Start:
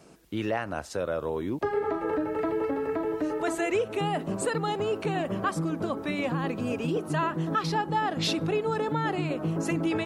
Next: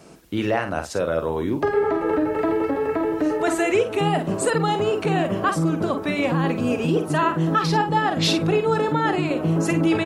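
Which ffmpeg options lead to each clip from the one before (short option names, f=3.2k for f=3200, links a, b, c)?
-filter_complex "[0:a]asplit=2[a][b];[b]adelay=49,volume=-8dB[c];[a][c]amix=inputs=2:normalize=0,volume=6.5dB"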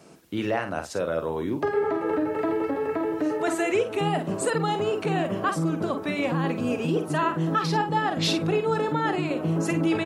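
-af "highpass=90,volume=-4dB"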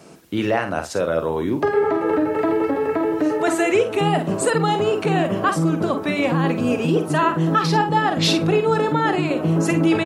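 -af "aecho=1:1:73:0.0794,volume=6dB"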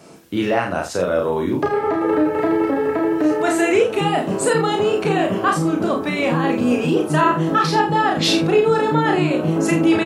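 -filter_complex "[0:a]asplit=2[a][b];[b]adelay=33,volume=-3dB[c];[a][c]amix=inputs=2:normalize=0"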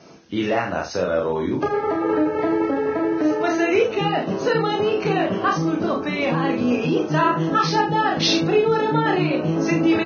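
-af "volume=-2.5dB" -ar 16000 -c:a libvorbis -b:a 16k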